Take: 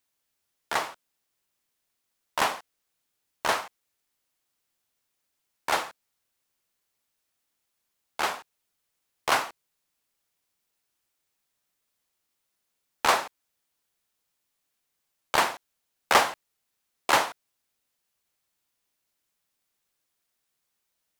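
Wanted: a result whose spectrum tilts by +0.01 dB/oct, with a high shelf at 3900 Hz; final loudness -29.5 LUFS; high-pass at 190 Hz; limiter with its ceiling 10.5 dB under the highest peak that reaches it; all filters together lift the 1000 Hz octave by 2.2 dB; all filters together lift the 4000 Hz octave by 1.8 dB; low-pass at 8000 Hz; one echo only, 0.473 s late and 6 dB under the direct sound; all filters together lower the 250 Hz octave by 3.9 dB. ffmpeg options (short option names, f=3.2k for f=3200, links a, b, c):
-af "highpass=190,lowpass=8k,equalizer=f=250:t=o:g=-4.5,equalizer=f=1k:t=o:g=3,highshelf=f=3.9k:g=-4.5,equalizer=f=4k:t=o:g=5,alimiter=limit=-14.5dB:level=0:latency=1,aecho=1:1:473:0.501,volume=2dB"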